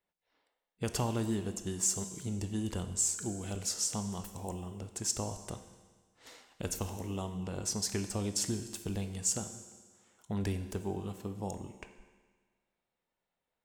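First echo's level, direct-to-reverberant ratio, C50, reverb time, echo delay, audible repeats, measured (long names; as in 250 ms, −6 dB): no echo audible, 9.0 dB, 10.5 dB, 1.5 s, no echo audible, no echo audible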